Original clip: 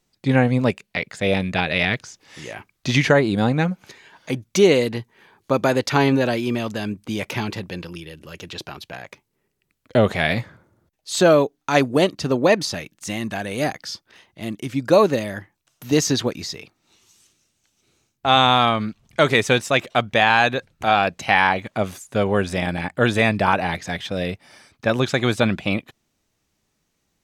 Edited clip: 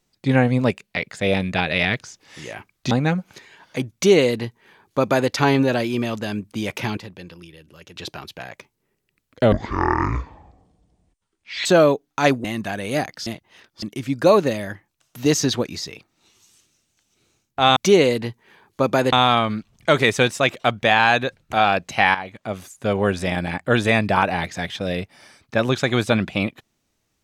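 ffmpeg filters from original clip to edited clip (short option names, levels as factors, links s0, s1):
-filter_complex "[0:a]asplit=12[s0][s1][s2][s3][s4][s5][s6][s7][s8][s9][s10][s11];[s0]atrim=end=2.912[s12];[s1]atrim=start=3.438:end=7.502[s13];[s2]atrim=start=7.498:end=8.492,asetpts=PTS-STARTPTS,volume=0.422[s14];[s3]atrim=start=8.488:end=10.054[s15];[s4]atrim=start=10.05:end=11.16,asetpts=PTS-STARTPTS,asetrate=22932,aresample=44100[s16];[s5]atrim=start=11.156:end=11.952[s17];[s6]atrim=start=13.108:end=13.932[s18];[s7]atrim=start=13.928:end=14.492,asetpts=PTS-STARTPTS,areverse[s19];[s8]atrim=start=14.488:end=18.432[s20];[s9]atrim=start=4.468:end=5.832[s21];[s10]atrim=start=18.428:end=21.45,asetpts=PTS-STARTPTS,afade=t=out:st=3.018:d=0.004:c=hsin:silence=0.223872[s22];[s11]atrim=start=21.45,asetpts=PTS-STARTPTS,afade=t=in:d=0.89:silence=0.223872[s23];[s12][s13]acrossfade=d=0.004:c1=hsin:c2=hsin[s24];[s24][s14]acrossfade=d=0.004:c1=hsin:c2=hsin[s25];[s25][s15]acrossfade=d=0.004:c1=hsin:c2=hsin[s26];[s26][s16]acrossfade=d=0.004:c1=hsin:c2=hsin[s27];[s27][s17]acrossfade=d=0.004:c1=hsin:c2=hsin[s28];[s28][s18]acrossfade=d=0.004:c1=hsin:c2=hsin[s29];[s29][s19]acrossfade=d=0.004:c1=hsin:c2=hsin[s30];[s30][s20]acrossfade=d=0.004:c1=hsin:c2=hsin[s31];[s31][s21]acrossfade=d=0.004:c1=hsin:c2=hsin[s32];[s22][s23]concat=n=2:v=0:a=1[s33];[s32][s33]acrossfade=d=0.004:c1=hsin:c2=hsin"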